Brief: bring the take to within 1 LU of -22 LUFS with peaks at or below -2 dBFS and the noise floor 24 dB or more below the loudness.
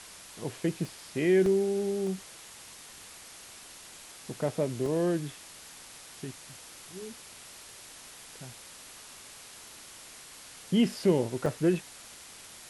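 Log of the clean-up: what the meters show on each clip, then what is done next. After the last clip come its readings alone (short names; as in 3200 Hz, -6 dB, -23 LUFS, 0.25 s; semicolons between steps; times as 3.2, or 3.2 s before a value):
dropouts 5; longest dropout 1.7 ms; noise floor -49 dBFS; noise floor target -54 dBFS; loudness -29.5 LUFS; peak -14.0 dBFS; loudness target -22.0 LUFS
-> interpolate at 0.85/1.46/2.07/4.86/11.46, 1.7 ms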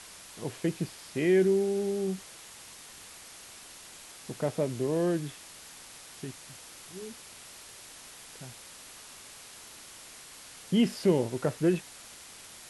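dropouts 0; noise floor -49 dBFS; noise floor target -54 dBFS
-> noise print and reduce 6 dB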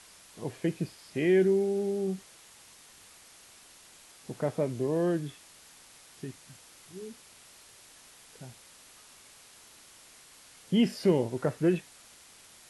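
noise floor -55 dBFS; loudness -29.0 LUFS; peak -14.0 dBFS; loudness target -22.0 LUFS
-> gain +7 dB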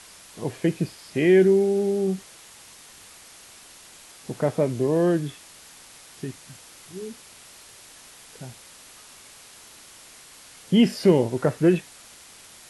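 loudness -22.0 LUFS; peak -7.0 dBFS; noise floor -48 dBFS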